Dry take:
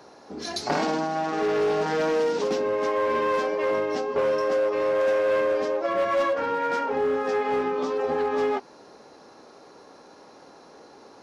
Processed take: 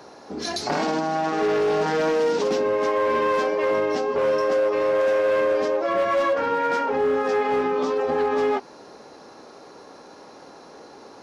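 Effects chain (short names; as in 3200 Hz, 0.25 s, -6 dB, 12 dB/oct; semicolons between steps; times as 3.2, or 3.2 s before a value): limiter -20 dBFS, peak gain reduction 5 dB; gain +4.5 dB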